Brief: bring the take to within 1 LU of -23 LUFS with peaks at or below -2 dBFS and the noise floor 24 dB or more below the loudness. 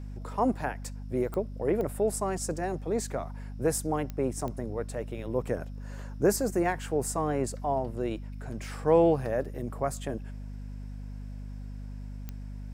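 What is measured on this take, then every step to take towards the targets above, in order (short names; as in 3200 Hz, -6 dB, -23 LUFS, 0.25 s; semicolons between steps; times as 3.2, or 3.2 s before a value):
clicks 5; hum 50 Hz; harmonics up to 250 Hz; hum level -36 dBFS; loudness -30.5 LUFS; peak -10.0 dBFS; loudness target -23.0 LUFS
-> de-click; notches 50/100/150/200/250 Hz; gain +7.5 dB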